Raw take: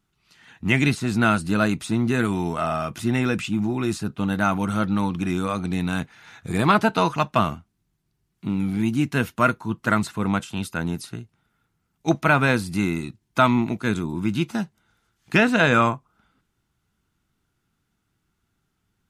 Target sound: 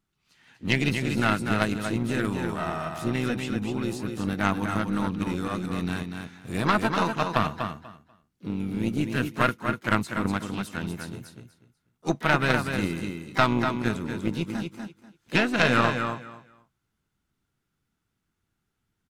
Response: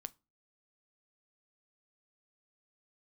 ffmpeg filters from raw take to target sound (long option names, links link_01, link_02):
-filter_complex "[0:a]asplit=3[link_01][link_02][link_03];[link_02]asetrate=52444,aresample=44100,atempo=0.840896,volume=-11dB[link_04];[link_03]asetrate=66075,aresample=44100,atempo=0.66742,volume=-12dB[link_05];[link_01][link_04][link_05]amix=inputs=3:normalize=0,aecho=1:1:244|488|732:0.562|0.112|0.0225,aeval=exprs='0.75*(cos(1*acos(clip(val(0)/0.75,-1,1)))-cos(1*PI/2))+0.168*(cos(2*acos(clip(val(0)/0.75,-1,1)))-cos(2*PI/2))+0.106*(cos(3*acos(clip(val(0)/0.75,-1,1)))-cos(3*PI/2))':channel_layout=same,volume=-2.5dB"